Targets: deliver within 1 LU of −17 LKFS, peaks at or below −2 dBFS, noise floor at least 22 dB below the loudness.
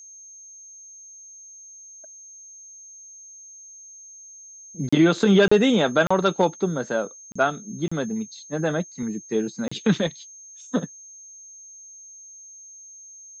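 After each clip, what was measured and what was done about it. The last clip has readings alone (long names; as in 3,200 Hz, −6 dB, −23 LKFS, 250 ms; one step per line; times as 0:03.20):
number of dropouts 6; longest dropout 35 ms; interfering tone 6,400 Hz; level of the tone −42 dBFS; integrated loudness −23.0 LKFS; sample peak −7.0 dBFS; target loudness −17.0 LKFS
→ repair the gap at 0:04.89/0:05.48/0:06.07/0:07.32/0:07.88/0:09.68, 35 ms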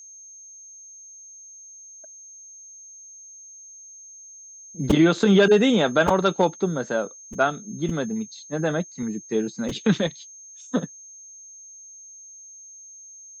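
number of dropouts 0; interfering tone 6,400 Hz; level of the tone −42 dBFS
→ notch filter 6,400 Hz, Q 30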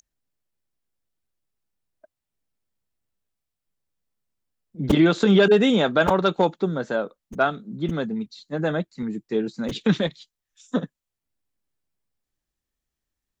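interfering tone none found; integrated loudness −22.5 LKFS; sample peak −5.5 dBFS; target loudness −17.0 LKFS
→ level +5.5 dB
brickwall limiter −2 dBFS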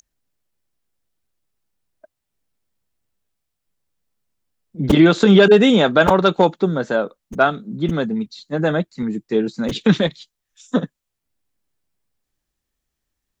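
integrated loudness −17.0 LKFS; sample peak −2.0 dBFS; background noise floor −80 dBFS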